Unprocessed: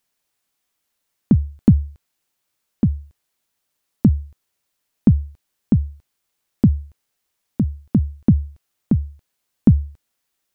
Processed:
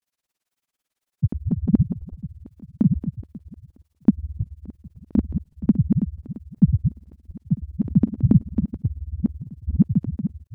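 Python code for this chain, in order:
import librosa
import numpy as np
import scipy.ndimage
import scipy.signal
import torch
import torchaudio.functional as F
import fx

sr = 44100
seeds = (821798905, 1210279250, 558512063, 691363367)

y = fx.reverse_delay_fb(x, sr, ms=146, feedback_pct=61, wet_db=-4.0)
y = fx.granulator(y, sr, seeds[0], grain_ms=57.0, per_s=18.0, spray_ms=100.0, spread_st=0)
y = fx.dynamic_eq(y, sr, hz=190.0, q=1.3, threshold_db=-29.0, ratio=4.0, max_db=5)
y = y * 10.0 ** (-2.5 / 20.0)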